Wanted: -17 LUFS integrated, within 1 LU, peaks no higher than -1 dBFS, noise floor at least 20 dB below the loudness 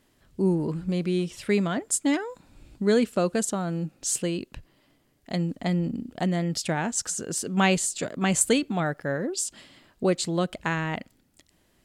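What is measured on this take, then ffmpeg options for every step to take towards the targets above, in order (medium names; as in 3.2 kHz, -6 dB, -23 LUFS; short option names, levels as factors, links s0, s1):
loudness -26.5 LUFS; peak level -7.0 dBFS; loudness target -17.0 LUFS
-> -af "volume=2.99,alimiter=limit=0.891:level=0:latency=1"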